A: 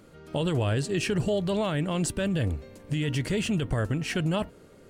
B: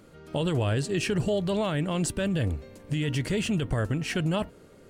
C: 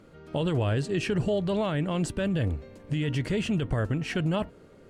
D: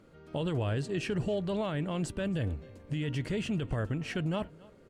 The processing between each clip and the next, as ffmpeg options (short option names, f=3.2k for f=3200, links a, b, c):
-af anull
-af "lowpass=f=3.5k:p=1"
-af "aecho=1:1:274:0.0708,volume=-5dB"